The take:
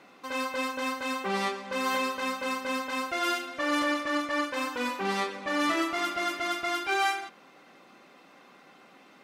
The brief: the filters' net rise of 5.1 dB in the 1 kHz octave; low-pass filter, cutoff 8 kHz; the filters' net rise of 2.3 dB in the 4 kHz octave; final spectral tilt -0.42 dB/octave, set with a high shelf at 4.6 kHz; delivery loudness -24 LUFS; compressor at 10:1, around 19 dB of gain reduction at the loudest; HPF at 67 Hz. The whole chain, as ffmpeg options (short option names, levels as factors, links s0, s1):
-af "highpass=67,lowpass=8000,equalizer=f=1000:t=o:g=6.5,equalizer=f=4000:t=o:g=7,highshelf=f=4600:g=-9,acompressor=threshold=0.01:ratio=10,volume=9.44"